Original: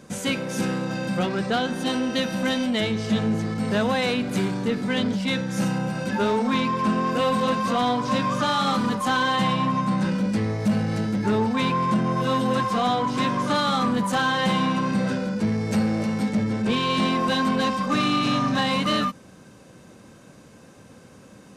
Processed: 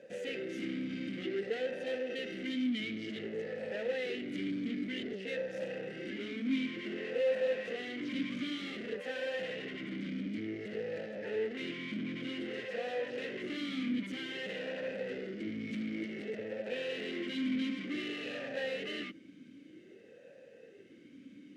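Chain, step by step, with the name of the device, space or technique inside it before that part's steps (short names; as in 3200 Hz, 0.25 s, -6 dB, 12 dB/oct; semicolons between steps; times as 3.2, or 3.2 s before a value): talk box (tube stage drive 31 dB, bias 0.6; vowel sweep e-i 0.54 Hz); gain +7.5 dB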